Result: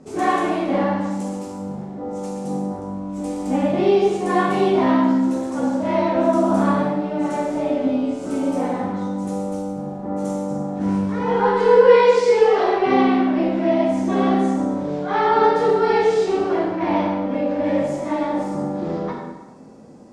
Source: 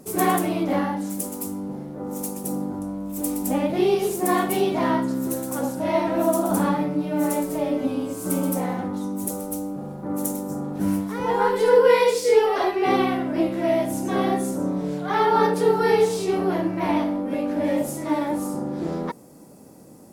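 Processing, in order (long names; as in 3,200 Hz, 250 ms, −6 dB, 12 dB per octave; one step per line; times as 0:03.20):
low-pass filter 7,600 Hz 24 dB per octave
high-shelf EQ 5,100 Hz −10.5 dB
dense smooth reverb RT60 1.1 s, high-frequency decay 0.9×, DRR −3 dB
level −1 dB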